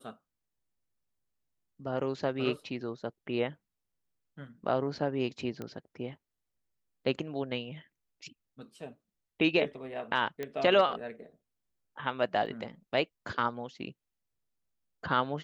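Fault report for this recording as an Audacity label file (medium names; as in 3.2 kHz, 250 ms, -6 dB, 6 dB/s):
5.620000	5.620000	pop -25 dBFS
10.430000	10.430000	pop -22 dBFS
12.460000	12.470000	dropout 5.2 ms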